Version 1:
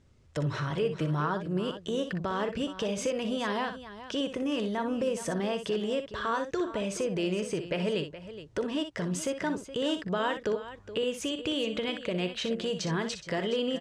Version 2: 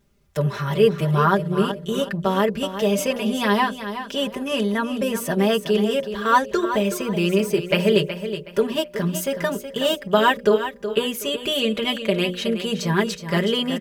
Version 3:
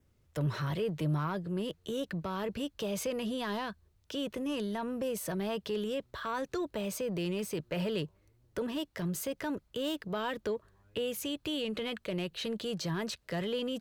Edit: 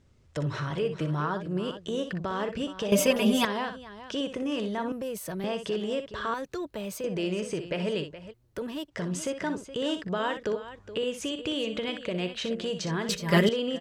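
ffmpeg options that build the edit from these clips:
ffmpeg -i take0.wav -i take1.wav -i take2.wav -filter_complex "[1:a]asplit=2[link_01][link_02];[2:a]asplit=3[link_03][link_04][link_05];[0:a]asplit=6[link_06][link_07][link_08][link_09][link_10][link_11];[link_06]atrim=end=2.922[link_12];[link_01]atrim=start=2.918:end=3.452[link_13];[link_07]atrim=start=3.448:end=4.922[link_14];[link_03]atrim=start=4.918:end=5.442[link_15];[link_08]atrim=start=5.438:end=6.342[link_16];[link_04]atrim=start=6.338:end=7.042[link_17];[link_09]atrim=start=7.038:end=8.34[link_18];[link_05]atrim=start=8.3:end=8.92[link_19];[link_10]atrim=start=8.88:end=13.092[link_20];[link_02]atrim=start=13.088:end=13.492[link_21];[link_11]atrim=start=13.488[link_22];[link_12][link_13]acrossfade=duration=0.004:curve1=hsin:curve2=hsin[link_23];[link_23][link_14]acrossfade=duration=0.004:curve1=hsin:curve2=hsin[link_24];[link_24][link_15]acrossfade=duration=0.004:curve1=hsin:curve2=hsin[link_25];[link_25][link_16]acrossfade=duration=0.004:curve1=hsin:curve2=hsin[link_26];[link_26][link_17]acrossfade=duration=0.004:curve1=hsin:curve2=hsin[link_27];[link_27][link_18]acrossfade=duration=0.004:curve1=hsin:curve2=hsin[link_28];[link_28][link_19]acrossfade=duration=0.04:curve1=tri:curve2=tri[link_29];[link_29][link_20]acrossfade=duration=0.04:curve1=tri:curve2=tri[link_30];[link_30][link_21]acrossfade=duration=0.004:curve1=hsin:curve2=hsin[link_31];[link_31][link_22]acrossfade=duration=0.004:curve1=hsin:curve2=hsin" out.wav

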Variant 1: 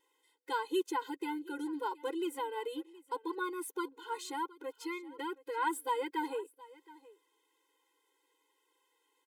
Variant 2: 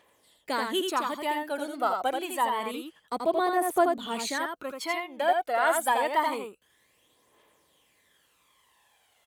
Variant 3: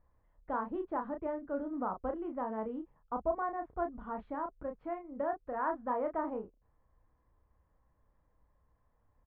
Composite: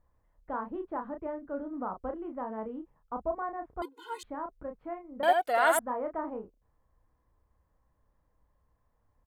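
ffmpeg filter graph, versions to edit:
ffmpeg -i take0.wav -i take1.wav -i take2.wav -filter_complex "[2:a]asplit=3[link_01][link_02][link_03];[link_01]atrim=end=3.822[link_04];[0:a]atrim=start=3.818:end=4.232[link_05];[link_02]atrim=start=4.228:end=5.232[link_06];[1:a]atrim=start=5.228:end=5.792[link_07];[link_03]atrim=start=5.788[link_08];[link_04][link_05]acrossfade=duration=0.004:curve1=hsin:curve2=hsin[link_09];[link_09][link_06]acrossfade=duration=0.004:curve1=hsin:curve2=hsin[link_10];[link_10][link_07]acrossfade=duration=0.004:curve1=hsin:curve2=hsin[link_11];[link_11][link_08]acrossfade=duration=0.004:curve1=hsin:curve2=hsin" out.wav

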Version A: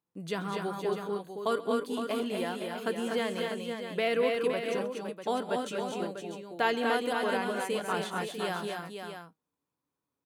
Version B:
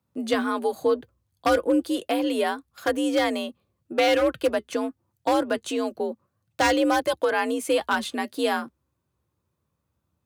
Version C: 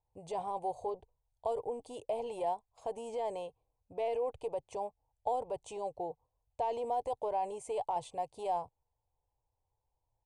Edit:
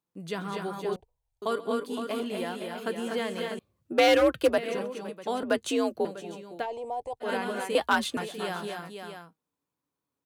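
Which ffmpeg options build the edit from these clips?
ffmpeg -i take0.wav -i take1.wav -i take2.wav -filter_complex "[2:a]asplit=2[link_01][link_02];[1:a]asplit=3[link_03][link_04][link_05];[0:a]asplit=6[link_06][link_07][link_08][link_09][link_10][link_11];[link_06]atrim=end=0.962[link_12];[link_01]atrim=start=0.958:end=1.422[link_13];[link_07]atrim=start=1.418:end=3.592[link_14];[link_03]atrim=start=3.588:end=4.582[link_15];[link_08]atrim=start=4.578:end=5.432[link_16];[link_04]atrim=start=5.428:end=6.052[link_17];[link_09]atrim=start=6.048:end=6.67[link_18];[link_02]atrim=start=6.57:end=7.3[link_19];[link_10]atrim=start=7.2:end=7.752[link_20];[link_05]atrim=start=7.748:end=8.172[link_21];[link_11]atrim=start=8.168[link_22];[link_12][link_13]acrossfade=duration=0.004:curve1=hsin:curve2=hsin[link_23];[link_23][link_14]acrossfade=duration=0.004:curve1=hsin:curve2=hsin[link_24];[link_24][link_15]acrossfade=duration=0.004:curve1=hsin:curve2=hsin[link_25];[link_25][link_16]acrossfade=duration=0.004:curve1=hsin:curve2=hsin[link_26];[link_26][link_17]acrossfade=duration=0.004:curve1=hsin:curve2=hsin[link_27];[link_27][link_18]acrossfade=duration=0.004:curve1=hsin:curve2=hsin[link_28];[link_28][link_19]acrossfade=duration=0.1:curve1=tri:curve2=tri[link_29];[link_29][link_20]acrossfade=duration=0.1:curve1=tri:curve2=tri[link_30];[link_30][link_21]acrossfade=duration=0.004:curve1=hsin:curve2=hsin[link_31];[link_31][link_22]acrossfade=duration=0.004:curve1=hsin:curve2=hsin" out.wav

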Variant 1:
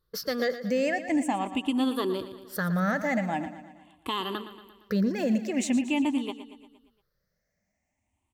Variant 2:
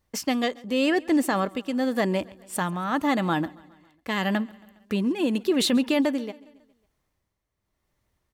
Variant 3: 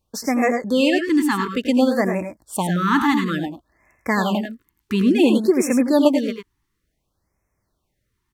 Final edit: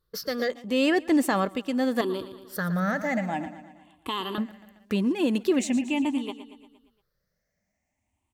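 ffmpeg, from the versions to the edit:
ffmpeg -i take0.wav -i take1.wav -filter_complex "[1:a]asplit=2[link_01][link_02];[0:a]asplit=3[link_03][link_04][link_05];[link_03]atrim=end=0.502[link_06];[link_01]atrim=start=0.498:end=2.012[link_07];[link_04]atrim=start=2.008:end=4.382[link_08];[link_02]atrim=start=4.378:end=5.592[link_09];[link_05]atrim=start=5.588[link_10];[link_06][link_07]acrossfade=duration=0.004:curve1=hsin:curve2=hsin[link_11];[link_11][link_08]acrossfade=duration=0.004:curve1=hsin:curve2=hsin[link_12];[link_12][link_09]acrossfade=duration=0.004:curve1=hsin:curve2=hsin[link_13];[link_13][link_10]acrossfade=duration=0.004:curve1=hsin:curve2=hsin" out.wav

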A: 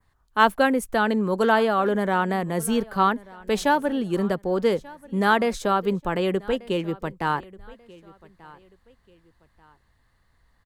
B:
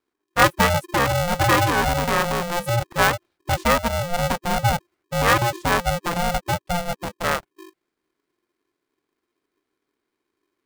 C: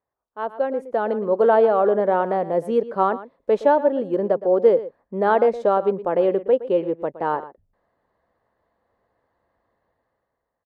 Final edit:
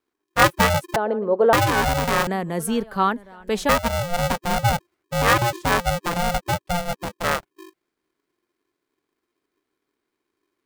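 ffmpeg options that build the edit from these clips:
ffmpeg -i take0.wav -i take1.wav -i take2.wav -filter_complex "[1:a]asplit=3[link_01][link_02][link_03];[link_01]atrim=end=0.962[link_04];[2:a]atrim=start=0.958:end=1.532[link_05];[link_02]atrim=start=1.528:end=2.272[link_06];[0:a]atrim=start=2.268:end=3.692[link_07];[link_03]atrim=start=3.688[link_08];[link_04][link_05]acrossfade=duration=0.004:curve1=hsin:curve2=hsin[link_09];[link_09][link_06]acrossfade=duration=0.004:curve1=hsin:curve2=hsin[link_10];[link_10][link_07]acrossfade=duration=0.004:curve1=hsin:curve2=hsin[link_11];[link_11][link_08]acrossfade=duration=0.004:curve1=hsin:curve2=hsin" out.wav

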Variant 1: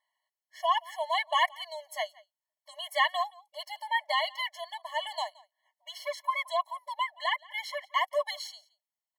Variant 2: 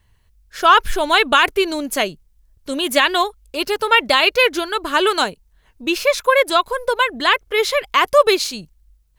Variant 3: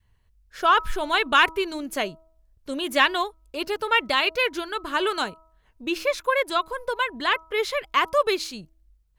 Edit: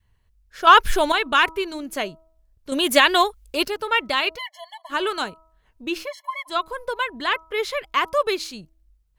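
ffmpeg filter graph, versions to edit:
ffmpeg -i take0.wav -i take1.wav -i take2.wav -filter_complex "[1:a]asplit=2[link_01][link_02];[0:a]asplit=2[link_03][link_04];[2:a]asplit=5[link_05][link_06][link_07][link_08][link_09];[link_05]atrim=end=0.672[link_10];[link_01]atrim=start=0.668:end=1.122[link_11];[link_06]atrim=start=1.118:end=2.722[link_12];[link_02]atrim=start=2.718:end=3.682[link_13];[link_07]atrim=start=3.678:end=4.39[link_14];[link_03]atrim=start=4.35:end=4.93[link_15];[link_08]atrim=start=4.89:end=6.1[link_16];[link_04]atrim=start=6:end=6.56[link_17];[link_09]atrim=start=6.46[link_18];[link_10][link_11]acrossfade=duration=0.004:curve1=hsin:curve2=hsin[link_19];[link_19][link_12]acrossfade=duration=0.004:curve1=hsin:curve2=hsin[link_20];[link_20][link_13]acrossfade=duration=0.004:curve1=hsin:curve2=hsin[link_21];[link_21][link_14]acrossfade=duration=0.004:curve1=hsin:curve2=hsin[link_22];[link_22][link_15]acrossfade=duration=0.04:curve1=tri:curve2=tri[link_23];[link_23][link_16]acrossfade=duration=0.04:curve1=tri:curve2=tri[link_24];[link_24][link_17]acrossfade=duration=0.1:curve1=tri:curve2=tri[link_25];[link_25][link_18]acrossfade=duration=0.1:curve1=tri:curve2=tri" out.wav

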